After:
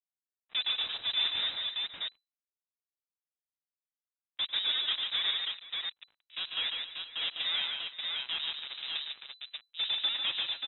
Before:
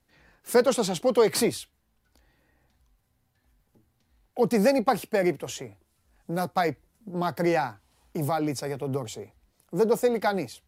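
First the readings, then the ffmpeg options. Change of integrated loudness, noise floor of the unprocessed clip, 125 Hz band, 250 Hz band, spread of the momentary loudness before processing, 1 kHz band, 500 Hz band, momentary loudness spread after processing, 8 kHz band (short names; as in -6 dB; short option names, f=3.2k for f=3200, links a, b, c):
-5.5 dB, -72 dBFS, under -30 dB, under -30 dB, 16 LU, -19.0 dB, -33.0 dB, 10 LU, under -40 dB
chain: -filter_complex "[0:a]highpass=92,acrossover=split=280[a][b];[a]alimiter=level_in=8dB:limit=-24dB:level=0:latency=1:release=107,volume=-8dB[c];[c][b]amix=inputs=2:normalize=0,acrusher=bits=3:mix=0:aa=0.5,asoftclip=type=hard:threshold=-24.5dB,asplit=2[d][e];[e]aecho=0:1:97|145|264|473|587:0.15|0.631|0.15|0.141|0.668[f];[d][f]amix=inputs=2:normalize=0,lowpass=f=3.4k:t=q:w=0.5098,lowpass=f=3.4k:t=q:w=0.6013,lowpass=f=3.4k:t=q:w=0.9,lowpass=f=3.4k:t=q:w=2.563,afreqshift=-4000,volume=-3.5dB"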